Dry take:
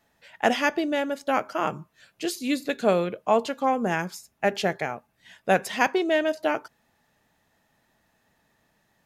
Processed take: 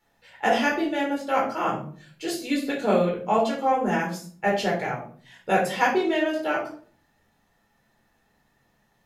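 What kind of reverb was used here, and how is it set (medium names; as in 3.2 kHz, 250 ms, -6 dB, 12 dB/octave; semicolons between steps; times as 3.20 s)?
simulated room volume 400 m³, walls furnished, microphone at 4.3 m; trim -6.5 dB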